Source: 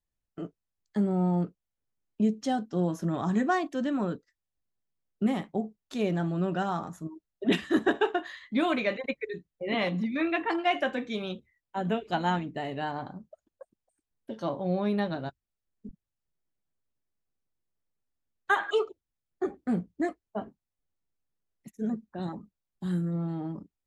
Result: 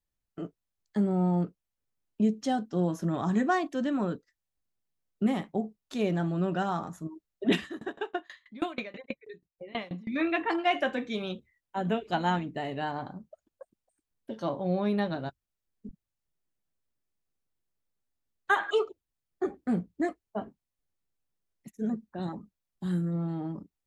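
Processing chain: 7.65–10.08 s: sawtooth tremolo in dB decaying 6.2 Hz, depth 26 dB

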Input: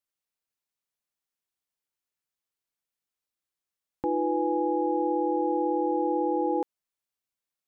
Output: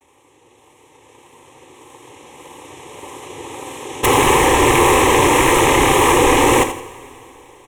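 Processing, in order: spectral levelling over time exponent 0.6; recorder AGC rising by 6.5 dB/s; noise-vocoded speech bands 2; vibrato 1.7 Hz 98 cents; sine folder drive 20 dB, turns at -4 dBFS; static phaser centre 970 Hz, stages 8; on a send: feedback delay 83 ms, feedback 32%, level -11 dB; on the sum: two-slope reverb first 0.41 s, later 3.6 s, from -18 dB, DRR 10 dB; trim -2.5 dB

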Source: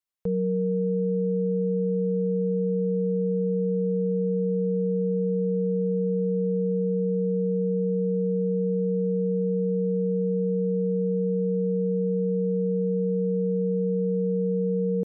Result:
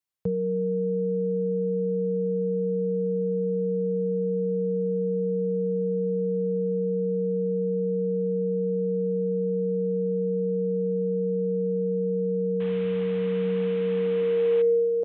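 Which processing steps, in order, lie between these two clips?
12.60–14.62 s: one-bit delta coder 16 kbps, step -32.5 dBFS; high-pass sweep 100 Hz -> 560 Hz, 13.05–14.90 s; de-hum 186.2 Hz, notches 12

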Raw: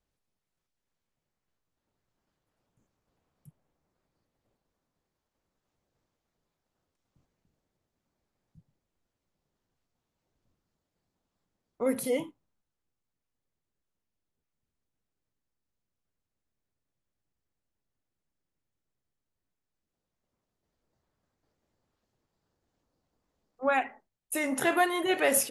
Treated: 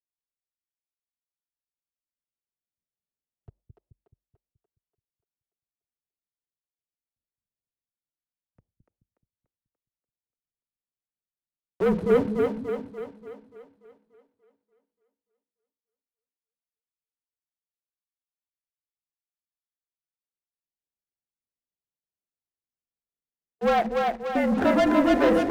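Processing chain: local Wiener filter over 25 samples; low-pass 1.2 kHz 12 dB/octave; bass shelf 120 Hz -6 dB; gate with hold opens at -50 dBFS; waveshaping leveller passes 3; frequency shift -48 Hz; two-band feedback delay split 310 Hz, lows 214 ms, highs 291 ms, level -3 dB

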